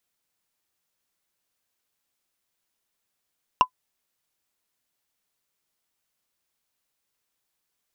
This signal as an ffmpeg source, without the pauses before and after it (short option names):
-f lavfi -i "aevalsrc='0.447*pow(10,-3*t/0.08)*sin(2*PI*1010*t)+0.168*pow(10,-3*t/0.024)*sin(2*PI*2784.6*t)+0.0631*pow(10,-3*t/0.011)*sin(2*PI*5458*t)+0.0237*pow(10,-3*t/0.006)*sin(2*PI*9022.3*t)+0.00891*pow(10,-3*t/0.004)*sin(2*PI*13473.4*t)':d=0.45:s=44100"